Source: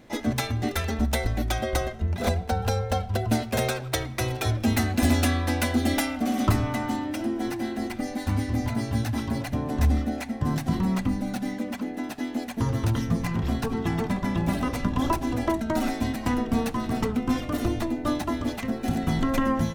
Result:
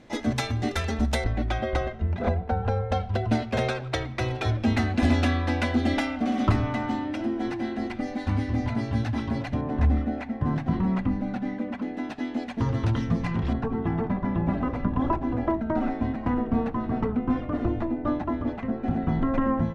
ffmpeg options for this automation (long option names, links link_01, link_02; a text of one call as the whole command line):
ffmpeg -i in.wav -af "asetnsamples=nb_out_samples=441:pad=0,asendcmd='1.24 lowpass f 2900;2.19 lowpass f 1700;2.92 lowpass f 3700;9.61 lowpass f 2200;11.82 lowpass f 3800;13.53 lowpass f 1500',lowpass=7300" out.wav